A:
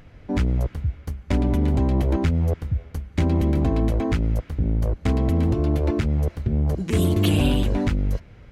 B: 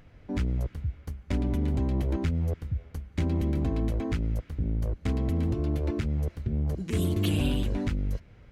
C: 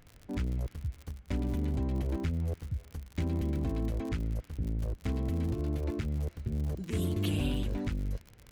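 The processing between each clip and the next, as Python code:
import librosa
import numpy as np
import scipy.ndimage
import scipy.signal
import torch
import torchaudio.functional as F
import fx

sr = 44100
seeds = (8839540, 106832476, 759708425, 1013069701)

y1 = fx.dynamic_eq(x, sr, hz=790.0, q=0.99, threshold_db=-42.0, ratio=4.0, max_db=-4)
y1 = F.gain(torch.from_numpy(y1), -6.5).numpy()
y2 = fx.dmg_crackle(y1, sr, seeds[0], per_s=84.0, level_db=-34.0)
y2 = F.gain(torch.from_numpy(y2), -4.5).numpy()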